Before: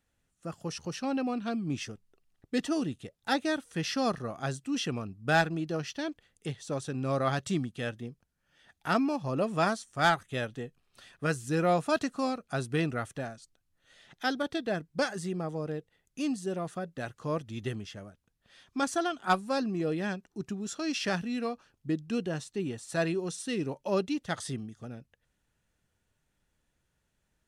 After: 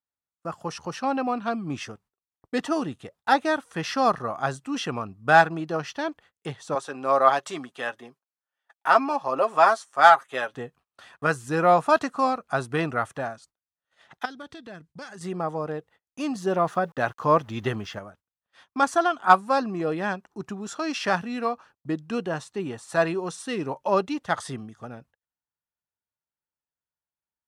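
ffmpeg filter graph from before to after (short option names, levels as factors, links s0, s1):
-filter_complex "[0:a]asettb=1/sr,asplit=3[s0][s1][s2];[s0]atrim=end=6.754[s3];[s1]atrim=start=6.75:end=10.55,asetpts=PTS-STARTPTS,afade=t=in:d=0.004:c=qsin,afade=t=out:st=3.796:d=0.004:c=qsin,highpass=390,aecho=1:1:7.4:0.45,atrim=end_sample=167580[s4];[s2]atrim=start=10.546[s5];[s3][s4]acrossfade=d=0.004:c1=hsin:c2=qsin[s6];[s6][s5]acrossfade=d=0.004:c1=qsin:c2=hsin,asettb=1/sr,asplit=3[s7][s8][s9];[s7]atrim=end=14.254[s10];[s8]atrim=start=14.25:end=15.21,asetpts=PTS-STARTPTS,afade=t=in:d=0.004:c=qsin,afade=t=out:st=0.956:d=0.004:c=qsin,lowpass=9800,equalizer=f=800:w=0.57:g=-13,acompressor=threshold=0.00794:ratio=4:attack=3.2:release=140:knee=1:detection=peak[s11];[s9]atrim=start=15.206[s12];[s10][s11]acrossfade=d=0.004:c1=hsin:c2=qsin[s13];[s13][s12]acrossfade=d=0.004:c1=qsin:c2=hsin,asettb=1/sr,asplit=3[s14][s15][s16];[s14]atrim=end=16.354[s17];[s15]atrim=start=16.35:end=17.99,asetpts=PTS-STARTPTS,afade=t=in:d=0.004:c=qsin,afade=t=out:st=1.636:d=0.004:c=qsin,equalizer=f=8500:t=o:w=0.31:g=-10.5,acontrast=25,aeval=exprs='val(0)*gte(abs(val(0)),0.0015)':c=same[s18];[s16]atrim=start=17.986[s19];[s17][s18]acrossfade=d=0.004:c1=hsin:c2=qsin[s20];[s20][s19]acrossfade=d=0.004:c1=qsin:c2=hsin,agate=range=0.0447:threshold=0.00141:ratio=16:detection=peak,highpass=49,equalizer=f=1000:t=o:w=1.6:g=13.5"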